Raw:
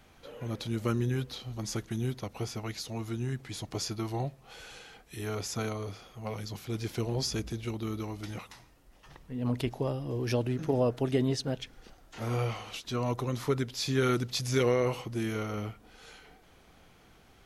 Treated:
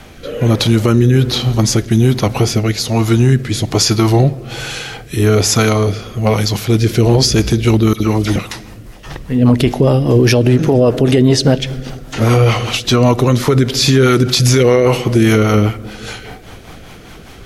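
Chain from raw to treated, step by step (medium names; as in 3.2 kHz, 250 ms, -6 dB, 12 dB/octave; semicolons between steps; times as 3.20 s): 7.93–8.36 s: phase dispersion lows, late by 71 ms, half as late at 1.8 kHz; on a send at -19 dB: reverberation RT60 1.8 s, pre-delay 18 ms; on the sum: rotary cabinet horn 1.2 Hz, later 5 Hz, at 6.82 s; loudness maximiser +26 dB; trim -1 dB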